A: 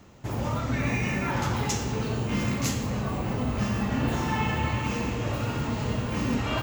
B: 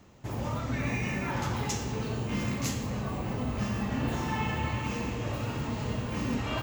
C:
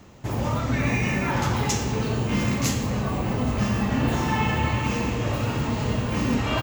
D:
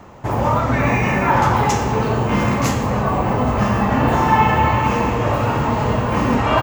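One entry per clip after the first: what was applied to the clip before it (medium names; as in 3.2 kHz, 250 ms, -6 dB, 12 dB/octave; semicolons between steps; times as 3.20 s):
band-stop 1.4 kHz, Q 27; trim -4 dB
delay 824 ms -22.5 dB; trim +7.5 dB
FFT filter 270 Hz 0 dB, 950 Hz +9 dB, 3.9 kHz -5 dB; trim +5 dB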